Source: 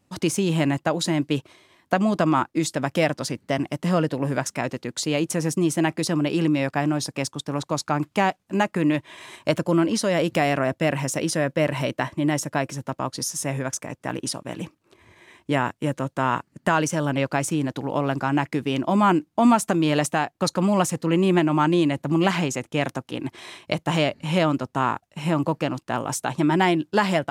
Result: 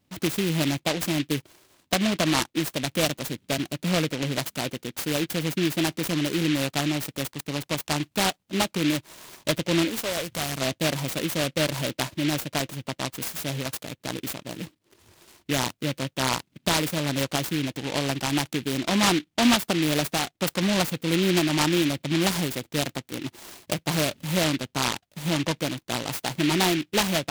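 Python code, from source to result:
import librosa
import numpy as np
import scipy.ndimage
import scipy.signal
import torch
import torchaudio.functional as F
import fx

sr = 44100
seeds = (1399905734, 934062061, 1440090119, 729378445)

y = fx.peak_eq(x, sr, hz=fx.line((9.89, 120.0), (10.6, 580.0)), db=-14.0, octaves=1.7, at=(9.89, 10.6), fade=0.02)
y = fx.noise_mod_delay(y, sr, seeds[0], noise_hz=2600.0, depth_ms=0.18)
y = F.gain(torch.from_numpy(y), -3.0).numpy()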